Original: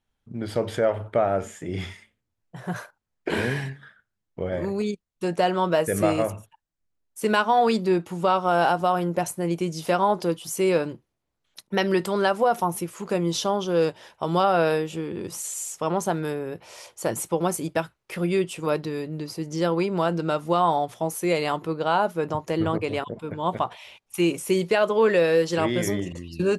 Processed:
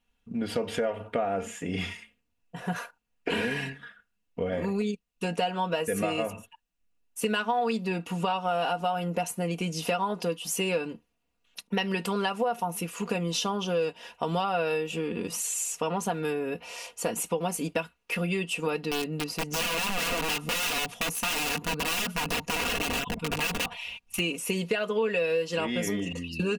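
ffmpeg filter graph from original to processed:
ffmpeg -i in.wav -filter_complex "[0:a]asettb=1/sr,asplit=3[link_01][link_02][link_03];[link_01]atrim=end=18.914[link_04];[link_02]atrim=start=18.91:end=24.19,asetpts=PTS-STARTPTS,afade=type=in:duration=0.004:curve=qsin,afade=type=out:start_time=5.276:duration=0.004:curve=qsin,asubboost=boost=4.5:cutoff=180,aeval=exprs='(mod(15*val(0)+1,2)-1)/15':channel_layout=same[link_05];[link_03]atrim=start=24.186[link_06];[link_04][link_05]acrossfade=duration=0.004:curve1=hsin:curve2=qsin[link_07];[link_07][link_06]acrossfade=duration=0.004:curve1=qsin:curve2=hsin,equalizer=frequency=2700:width=6.4:gain=12.5,aecho=1:1:4.2:0.71,acompressor=threshold=-26dB:ratio=4" out.wav

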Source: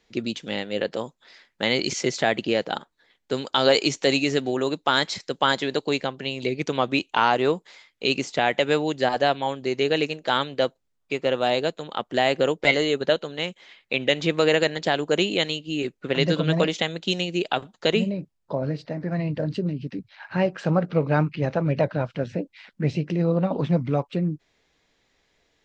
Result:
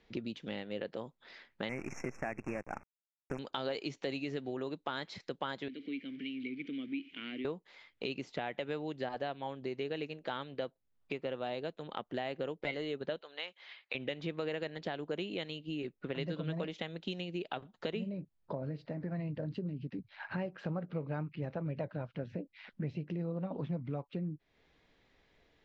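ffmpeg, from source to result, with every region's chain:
ffmpeg -i in.wav -filter_complex "[0:a]asettb=1/sr,asplit=3[link_01][link_02][link_03];[link_01]atrim=end=1.694[link_04];[link_02]atrim=start=1.69:end=3.39,asetpts=PTS-STARTPTS,afade=type=in:duration=0.004:curve=qsin,afade=type=out:start_time=1.696:duration=0.004:curve=qsin,equalizer=frequency=450:width_type=o:width=0.51:gain=-6,acrusher=bits=5:dc=4:mix=0:aa=0.000001,asuperstop=centerf=3800:order=20:qfactor=1.4[link_05];[link_03]atrim=start=3.386[link_06];[link_04][link_05]acrossfade=duration=0.004:curve1=hsin:curve2=qsin[link_07];[link_07][link_06]acrossfade=duration=0.004:curve1=qsin:curve2=hsin,asettb=1/sr,asplit=3[link_08][link_09][link_10];[link_08]atrim=end=5.684[link_11];[link_09]atrim=start=5.68:end=7.45,asetpts=PTS-STARTPTS,afade=type=in:duration=0.004:curve=qsin,afade=type=out:start_time=1.766:duration=0.004:curve=qsin,aeval=exprs='val(0)+0.5*0.0251*sgn(val(0))':channel_layout=same,asplit=3[link_12][link_13][link_14];[link_12]bandpass=frequency=270:width_type=q:width=8,volume=0dB[link_15];[link_13]bandpass=frequency=2290:width_type=q:width=8,volume=-6dB[link_16];[link_14]bandpass=frequency=3010:width_type=q:width=8,volume=-9dB[link_17];[link_15][link_16][link_17]amix=inputs=3:normalize=0,equalizer=frequency=2500:width=1.4:gain=5[link_18];[link_10]atrim=start=7.446[link_19];[link_11][link_18]acrossfade=duration=0.004:curve1=hsin:curve2=qsin[link_20];[link_20][link_19]acrossfade=duration=0.004:curve1=qsin:curve2=hsin,asettb=1/sr,asplit=3[link_21][link_22][link_23];[link_21]atrim=end=13.214[link_24];[link_22]atrim=start=13.21:end=13.95,asetpts=PTS-STARTPTS,afade=type=in:duration=0.004:curve=qsin,afade=type=out:start_time=0.736:duration=0.004:curve=qsin,highpass=750,lowpass=6200,equalizer=frequency=4600:width=2.8:gain=5[link_25];[link_23]atrim=start=13.946[link_26];[link_24][link_25]acrossfade=duration=0.004:curve1=hsin:curve2=qsin[link_27];[link_27][link_26]acrossfade=duration=0.004:curve1=qsin:curve2=hsin,lowpass=3700,lowshelf=frequency=350:gain=4,acompressor=threshold=-38dB:ratio=3,volume=-2dB" out.wav

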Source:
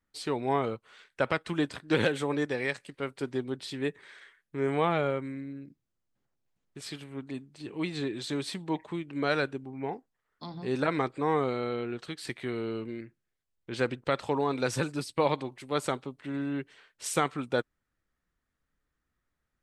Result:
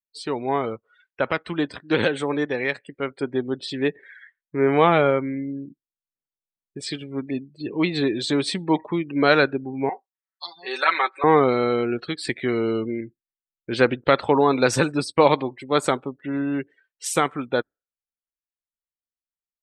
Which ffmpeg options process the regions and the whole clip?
ffmpeg -i in.wav -filter_complex "[0:a]asettb=1/sr,asplit=3[link_01][link_02][link_03];[link_01]atrim=end=9.894[link_04];[link_02]atrim=start=9.89:end=11.24,asetpts=PTS-STARTPTS,afade=type=in:duration=0.004:curve=qsin,afade=type=out:start_time=1.346:duration=0.004:curve=qsin,highpass=980,equalizer=frequency=5000:width_type=o:width=1.9:gain=2.5,aecho=1:1:5.3:0.7,atrim=end_sample=59535[link_05];[link_03]atrim=start=11.236[link_06];[link_04][link_05]acrossfade=duration=0.004:curve1=hsin:curve2=qsin[link_07];[link_07][link_06]acrossfade=duration=0.004:curve1=qsin:curve2=hsin,afftdn=noise_reduction=32:noise_floor=-47,equalizer=frequency=130:width_type=o:width=0.93:gain=-4,dynaudnorm=framelen=340:gausssize=21:maxgain=7dB,volume=4.5dB" out.wav

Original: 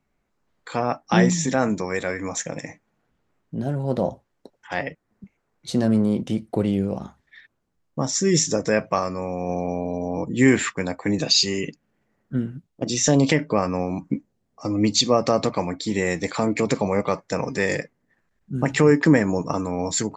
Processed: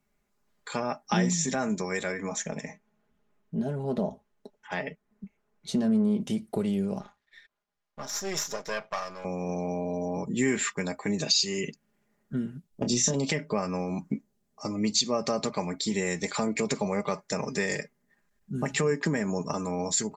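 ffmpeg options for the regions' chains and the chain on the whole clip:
ffmpeg -i in.wav -filter_complex "[0:a]asettb=1/sr,asplit=3[link_01][link_02][link_03];[link_01]atrim=end=2.124[link_04];[link_02]atrim=start=2.12:end=6.21,asetpts=PTS-STARTPTS,afade=type=in:duration=0.004:curve=qsin,afade=type=out:start_time=4.086:duration=0.004:curve=qsin,highshelf=frequency=4700:gain=-11.5,aecho=1:1:4.6:0.35,atrim=end_sample=180369[link_05];[link_03]atrim=start=6.206[link_06];[link_04][link_05]acrossfade=duration=0.004:curve1=hsin:curve2=qsin[link_07];[link_07][link_06]acrossfade=duration=0.004:curve1=qsin:curve2=hsin,asettb=1/sr,asplit=3[link_08][link_09][link_10];[link_08]atrim=end=7.014[link_11];[link_09]atrim=start=7.01:end=9.25,asetpts=PTS-STARTPTS,afade=type=in:duration=0.004:curve=qsin,afade=type=out:start_time=2.236:duration=0.004:curve=qsin,aeval=exprs='if(lt(val(0),0),0.251*val(0),val(0))':channel_layout=same,acrossover=split=540 5300:gain=0.224 1 0.158[link_12][link_13][link_14];[link_12][link_13][link_14]amix=inputs=3:normalize=0[link_15];[link_10]atrim=start=9.246[link_16];[link_11][link_15]acrossfade=duration=0.004:curve1=hsin:curve2=qsin[link_17];[link_17][link_16]acrossfade=duration=0.004:curve1=qsin:curve2=hsin,asettb=1/sr,asplit=3[link_18][link_19][link_20];[link_18]atrim=end=12.714[link_21];[link_19]atrim=start=12.71:end=13.14,asetpts=PTS-STARTPTS,afade=type=in:duration=0.004:curve=qsin,afade=type=out:start_time=0.426:duration=0.004:curve=qsin,lowshelf=frequency=420:gain=9.5,acompressor=threshold=-14dB:ratio=6:attack=3.2:release=140:knee=1:detection=peak,asplit=2[link_22][link_23];[link_23]adelay=25,volume=-6dB[link_24];[link_22][link_24]amix=inputs=2:normalize=0,atrim=end_sample=18963[link_25];[link_20]atrim=start=13.136[link_26];[link_21][link_25]acrossfade=duration=0.004:curve1=hsin:curve2=qsin[link_27];[link_27][link_26]acrossfade=duration=0.004:curve1=qsin:curve2=hsin,aemphasis=mode=production:type=cd,acompressor=threshold=-24dB:ratio=2,aecho=1:1:4.9:0.53,volume=-4dB" out.wav

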